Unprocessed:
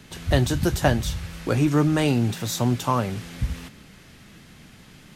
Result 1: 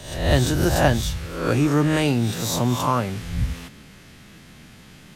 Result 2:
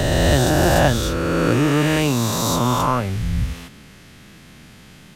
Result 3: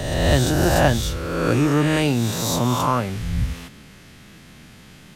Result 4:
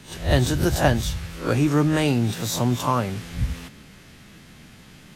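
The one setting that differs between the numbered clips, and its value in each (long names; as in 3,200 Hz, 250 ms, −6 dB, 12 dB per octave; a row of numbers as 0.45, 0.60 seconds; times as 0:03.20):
peak hold with a rise ahead of every peak, rising 60 dB in: 0.67, 3.2, 1.42, 0.31 seconds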